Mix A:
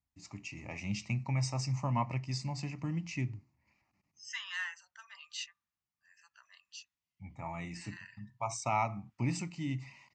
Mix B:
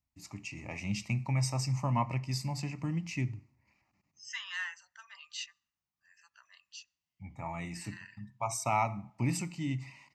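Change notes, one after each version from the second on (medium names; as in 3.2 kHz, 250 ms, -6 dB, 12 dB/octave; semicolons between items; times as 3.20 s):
first voice: remove steep low-pass 7.6 kHz 48 dB/octave; reverb: on, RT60 0.65 s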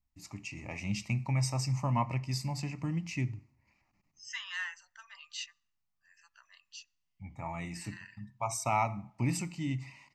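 first voice: remove high-pass 62 Hz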